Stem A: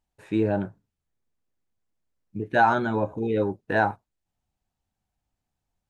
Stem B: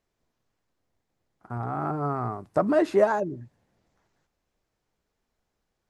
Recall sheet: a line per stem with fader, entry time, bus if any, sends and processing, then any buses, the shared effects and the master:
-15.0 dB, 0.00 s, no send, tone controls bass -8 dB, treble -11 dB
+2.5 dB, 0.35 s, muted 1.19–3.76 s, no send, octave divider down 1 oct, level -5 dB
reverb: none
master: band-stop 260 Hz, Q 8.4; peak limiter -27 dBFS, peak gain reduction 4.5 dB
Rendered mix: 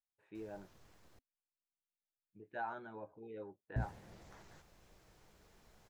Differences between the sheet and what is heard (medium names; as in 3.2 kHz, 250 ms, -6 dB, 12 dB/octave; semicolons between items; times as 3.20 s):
stem A -15.0 dB -> -22.0 dB; stem B +2.5 dB -> +13.5 dB